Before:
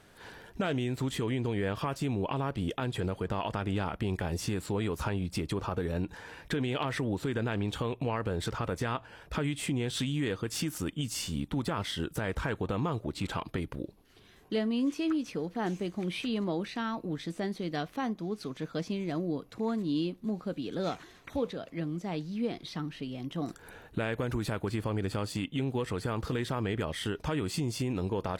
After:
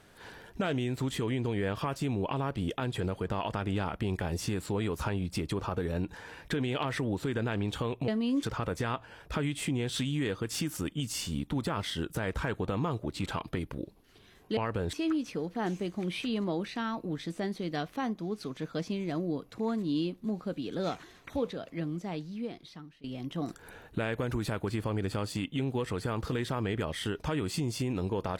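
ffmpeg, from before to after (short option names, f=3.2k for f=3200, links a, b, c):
-filter_complex "[0:a]asplit=6[a][b][c][d][e][f];[a]atrim=end=8.082[g];[b]atrim=start=14.578:end=14.932[h];[c]atrim=start=8.438:end=14.582[i];[d]atrim=start=8.078:end=8.442[j];[e]atrim=start=14.928:end=23.04,asetpts=PTS-STARTPTS,afade=t=out:st=6.972:d=1.14:silence=0.0891251[k];[f]atrim=start=23.04,asetpts=PTS-STARTPTS,afade=t=in:d=0.004:c=hsin:silence=0.0891251[l];[g][h]acrossfade=d=0.004:c1=hsin:c2=hsin[m];[m][i]acrossfade=d=0.004:c1=hsin:c2=hsin[n];[n][j]acrossfade=d=0.004:c1=hsin:c2=hsin[o];[k][l]concat=n=2:v=0:a=1[p];[o][p]acrossfade=d=0.004:c1=hsin:c2=hsin"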